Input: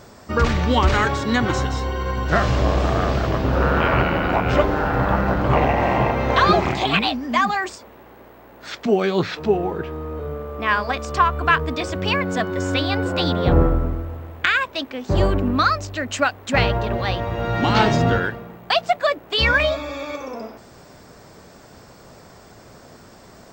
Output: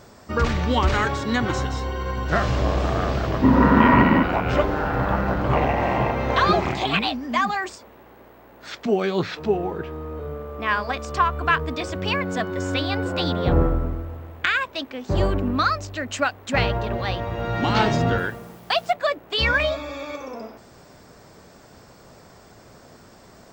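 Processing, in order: 3.42–4.23 s: small resonant body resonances 240/980/1900 Hz, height 17 dB; 18.18–18.93 s: word length cut 8-bit, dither none; trim -3 dB

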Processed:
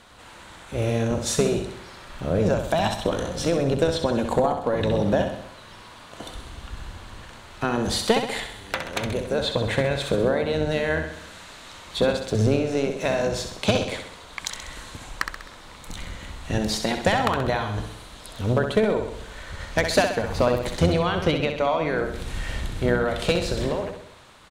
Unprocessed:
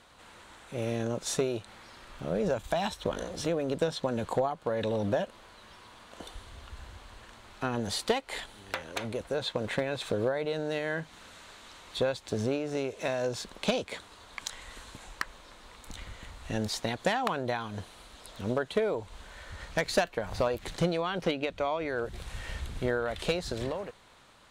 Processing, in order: octave divider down 1 oct, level -2 dB; feedback delay 65 ms, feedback 54%, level -7 dB; trim +6.5 dB

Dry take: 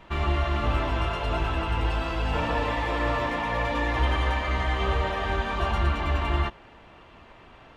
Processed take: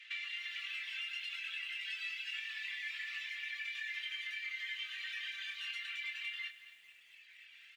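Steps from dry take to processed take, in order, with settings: reverb removal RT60 1.9 s; steep high-pass 2 kHz 48 dB/octave; tilt EQ -4.5 dB/octave; compression 16:1, threshold -51 dBFS, peak gain reduction 11 dB; doubling 24 ms -4.5 dB; bit-crushed delay 224 ms, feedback 55%, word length 12-bit, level -13.5 dB; trim +11 dB

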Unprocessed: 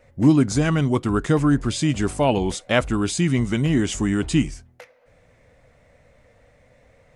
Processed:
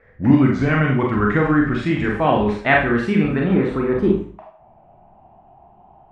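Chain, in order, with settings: gliding tape speed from 90% -> 144%; low-pass sweep 1.9 kHz -> 820 Hz, 3.04–4.66 s; Schroeder reverb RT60 0.44 s, combs from 30 ms, DRR -1 dB; trim -1 dB

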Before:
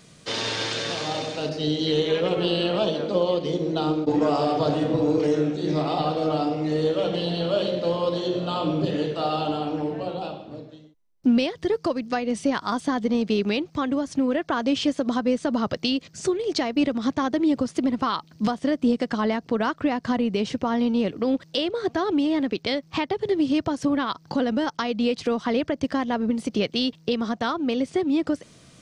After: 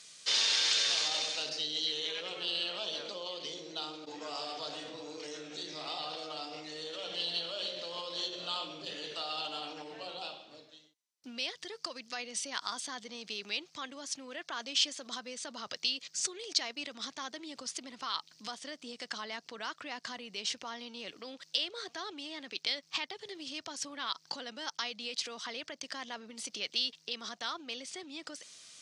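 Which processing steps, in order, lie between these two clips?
in parallel at -2.5 dB: compressor with a negative ratio -28 dBFS, ratio -0.5; on the sum: band-pass filter 5.8 kHz, Q 0.83; trim -3 dB

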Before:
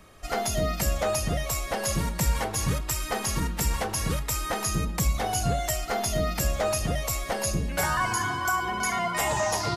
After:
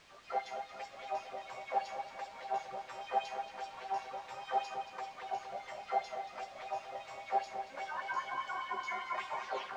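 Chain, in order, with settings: tape stop on the ending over 0.33 s; tilt EQ -3 dB/octave; peak limiter -24.5 dBFS, peak gain reduction 20.5 dB; chord resonator C3 fifth, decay 0.26 s; LFO high-pass sine 5 Hz 580–4100 Hz; added noise white -64 dBFS; distance through air 150 m; tape echo 230 ms, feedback 77%, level -7.5 dB, low-pass 4.3 kHz; on a send at -16 dB: reverberation RT60 1.3 s, pre-delay 3 ms; on the sum: trim +9 dB

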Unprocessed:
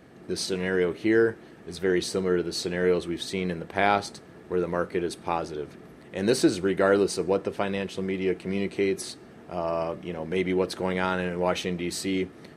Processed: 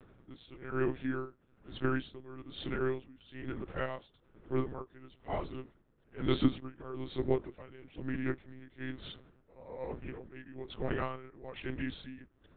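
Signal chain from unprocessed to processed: rotating-head pitch shifter -3.5 st; monotone LPC vocoder at 8 kHz 130 Hz; logarithmic tremolo 1.1 Hz, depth 19 dB; trim -4 dB

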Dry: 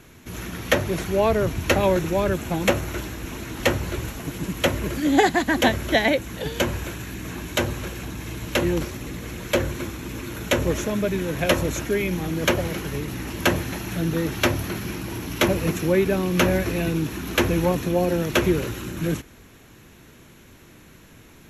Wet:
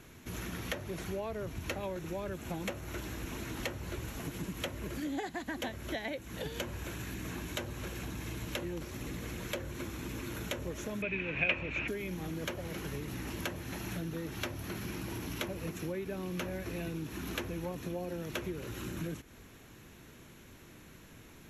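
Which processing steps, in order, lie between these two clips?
compression 6:1, threshold -30 dBFS, peak gain reduction 17 dB; 11.02–11.88 s: resonant low-pass 2.5 kHz, resonance Q 11; trim -5.5 dB

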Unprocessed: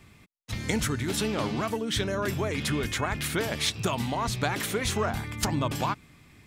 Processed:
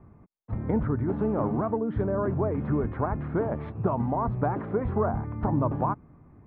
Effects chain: low-pass 1.1 kHz 24 dB/octave; trim +3 dB

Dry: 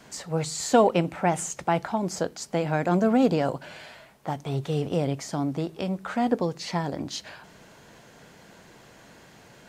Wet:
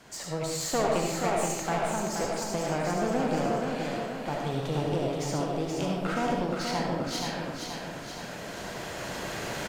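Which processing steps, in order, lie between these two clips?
recorder AGC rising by 6.5 dB/s; peaking EQ 210 Hz -3 dB; in parallel at +0.5 dB: compression, threshold -30 dBFS, peak gain reduction 15 dB; on the sum: one-sided clip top -28 dBFS; feedback delay 476 ms, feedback 54%, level -5 dB; reverberation RT60 0.85 s, pre-delay 30 ms, DRR -0.5 dB; trim -8.5 dB

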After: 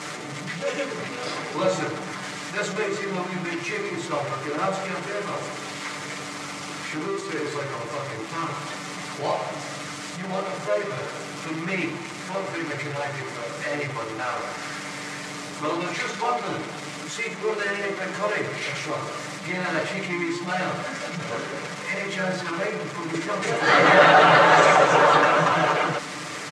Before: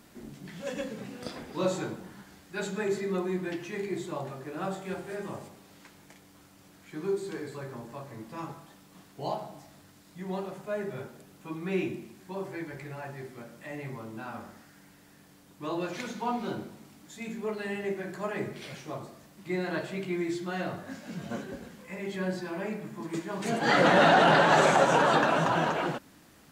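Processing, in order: jump at every zero crossing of -31.5 dBFS; bass shelf 500 Hz -2 dB; comb 6.7 ms, depth 81%; harmony voices -3 st -8 dB; cabinet simulation 150–8200 Hz, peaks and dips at 250 Hz -8 dB, 540 Hz +3 dB, 1.2 kHz +6 dB, 2.1 kHz +7 dB; trim +1 dB

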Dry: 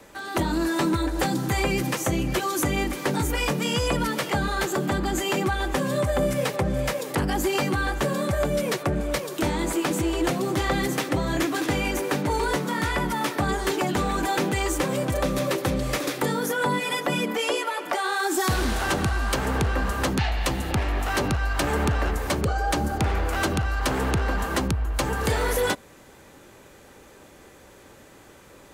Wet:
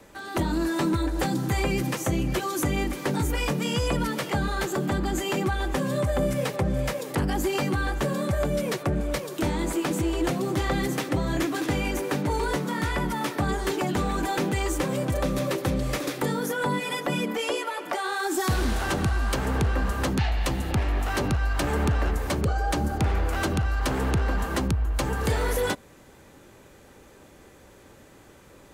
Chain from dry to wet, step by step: bass shelf 320 Hz +4.5 dB; trim -3.5 dB

